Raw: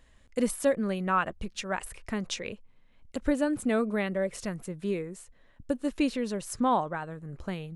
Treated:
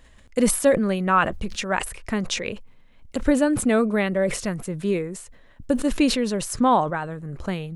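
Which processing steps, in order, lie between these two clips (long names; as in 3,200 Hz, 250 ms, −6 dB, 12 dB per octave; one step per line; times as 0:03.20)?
level that may fall only so fast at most 90 dB per second
level +7 dB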